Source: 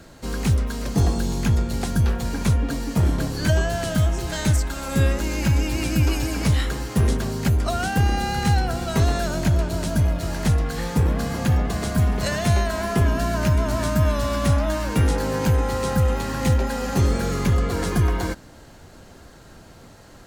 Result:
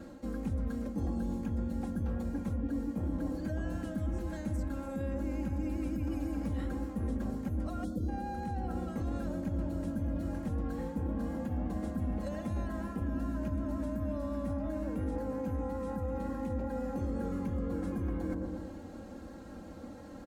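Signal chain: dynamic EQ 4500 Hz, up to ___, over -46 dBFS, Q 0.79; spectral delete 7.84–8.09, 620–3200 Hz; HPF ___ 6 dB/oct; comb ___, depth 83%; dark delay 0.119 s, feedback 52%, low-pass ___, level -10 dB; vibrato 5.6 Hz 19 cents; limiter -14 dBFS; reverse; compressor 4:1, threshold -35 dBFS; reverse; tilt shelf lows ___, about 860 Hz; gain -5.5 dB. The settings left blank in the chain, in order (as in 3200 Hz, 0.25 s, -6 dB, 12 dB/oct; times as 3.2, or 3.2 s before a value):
-6 dB, 170 Hz, 3.7 ms, 1100 Hz, +9 dB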